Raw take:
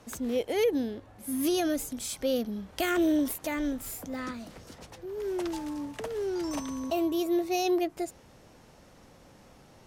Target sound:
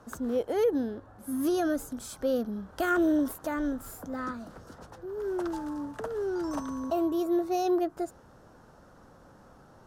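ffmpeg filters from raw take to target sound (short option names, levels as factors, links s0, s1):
-af "highshelf=f=1800:t=q:w=3:g=-6.5"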